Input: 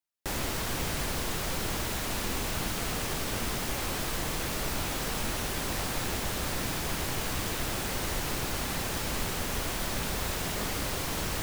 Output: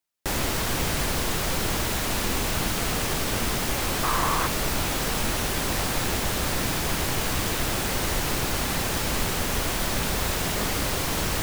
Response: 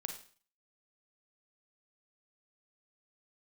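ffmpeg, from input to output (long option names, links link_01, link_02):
-filter_complex "[0:a]asettb=1/sr,asplit=3[link_01][link_02][link_03];[link_01]atrim=end=4.034[link_04];[link_02]atrim=start=4.03:end=4.47,asetpts=PTS-STARTPTS,afade=type=in:duration=0.004:curve=qsin,afade=type=out:start_time=0.436:duration=0.004:curve=qsin,equalizer=frequency=1100:width=2.2:gain=13[link_05];[link_03]atrim=start=4.466[link_06];[link_04][link_05]acrossfade=duration=0.004:curve1=hsin:curve2=qsin[link_07];[link_07][link_06]acrossfade=duration=0.004:curve1=qsin:curve2=hsin,volume=6dB"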